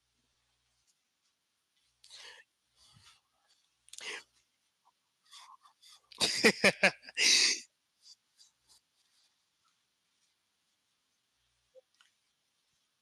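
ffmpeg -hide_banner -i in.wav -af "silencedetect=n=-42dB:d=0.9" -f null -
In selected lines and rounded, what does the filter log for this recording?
silence_start: 0.00
silence_end: 2.04 | silence_duration: 2.04
silence_start: 2.31
silence_end: 3.89 | silence_duration: 1.58
silence_start: 4.19
silence_end: 5.35 | silence_duration: 1.16
silence_start: 7.62
silence_end: 13.02 | silence_duration: 5.40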